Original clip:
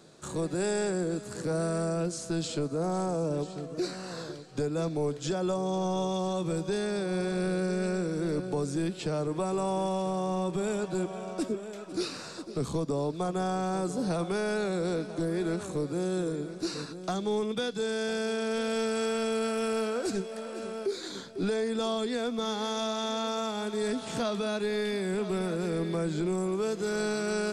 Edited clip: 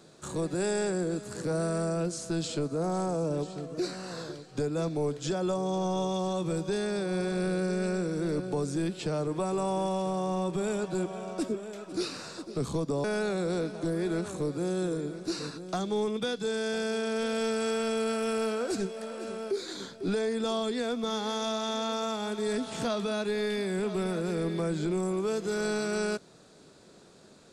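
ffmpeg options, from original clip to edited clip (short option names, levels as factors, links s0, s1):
-filter_complex "[0:a]asplit=2[s0][s1];[s0]atrim=end=13.042[s2];[s1]atrim=start=14.388[s3];[s2][s3]acrossfade=d=0.004:c1=hsin:c2=hsin"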